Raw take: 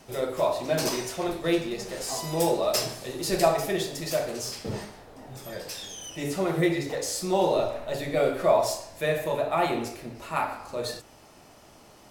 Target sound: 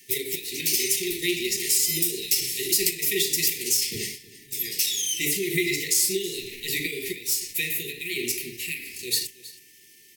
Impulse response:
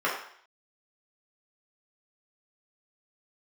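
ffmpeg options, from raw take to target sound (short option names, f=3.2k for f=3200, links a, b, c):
-filter_complex "[0:a]acrossover=split=150|2600[a][b][c];[b]acontrast=89[d];[a][d][c]amix=inputs=3:normalize=0,aemphasis=mode=production:type=bsi,agate=range=-10dB:threshold=-38dB:ratio=16:detection=peak,equalizer=f=250:t=o:w=1.3:g=-12,bandreject=f=127:t=h:w=4,bandreject=f=254:t=h:w=4,asplit=2[e][f];[f]alimiter=limit=-13dB:level=0:latency=1:release=293,volume=1dB[g];[e][g]amix=inputs=2:normalize=0,acompressor=threshold=-17dB:ratio=6,asetrate=38170,aresample=44100,atempo=1.15535,aeval=exprs='val(0)+0.00398*sin(2*PI*1500*n/s)':c=same,asetrate=52479,aresample=44100,asuperstop=centerf=910:order=20:qfactor=0.58,aecho=1:1:320:0.119"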